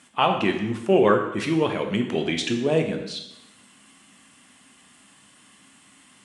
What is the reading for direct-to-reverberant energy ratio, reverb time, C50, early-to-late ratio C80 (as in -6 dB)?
3.5 dB, 0.90 s, 7.0 dB, 9.5 dB